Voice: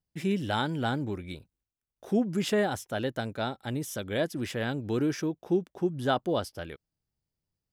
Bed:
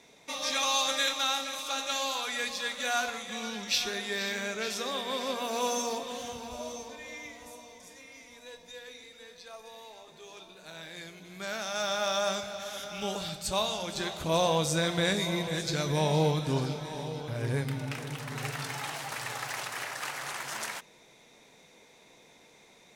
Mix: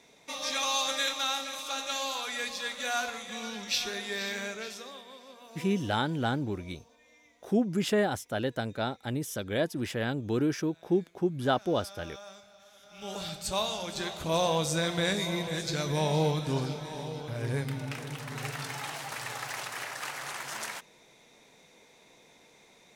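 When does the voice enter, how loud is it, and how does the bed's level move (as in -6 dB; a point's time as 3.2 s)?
5.40 s, 0.0 dB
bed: 4.44 s -1.5 dB
5.22 s -18 dB
12.8 s -18 dB
13.2 s -1 dB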